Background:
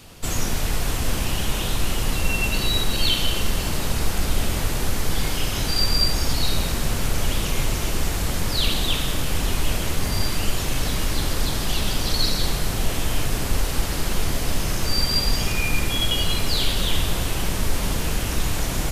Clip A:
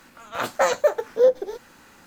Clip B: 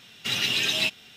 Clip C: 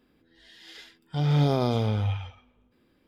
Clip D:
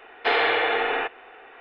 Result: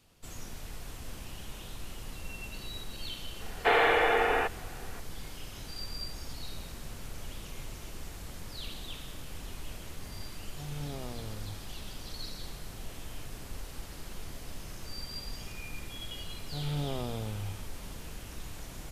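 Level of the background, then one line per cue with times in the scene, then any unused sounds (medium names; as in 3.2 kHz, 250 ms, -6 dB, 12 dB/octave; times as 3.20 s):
background -19.5 dB
3.40 s: add D -1 dB + low-pass 2 kHz 6 dB/octave
9.43 s: add C -18 dB
15.38 s: add C -12 dB
not used: A, B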